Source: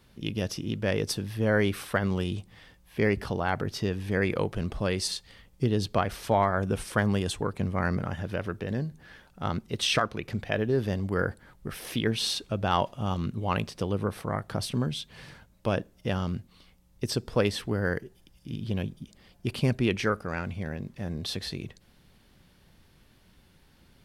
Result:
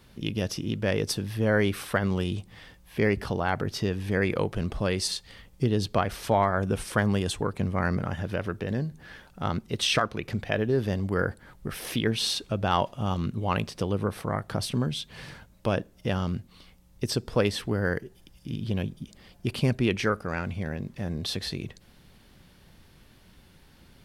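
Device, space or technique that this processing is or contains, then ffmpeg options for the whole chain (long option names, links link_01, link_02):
parallel compression: -filter_complex "[0:a]asplit=2[link_01][link_02];[link_02]acompressor=threshold=-38dB:ratio=6,volume=-4dB[link_03];[link_01][link_03]amix=inputs=2:normalize=0"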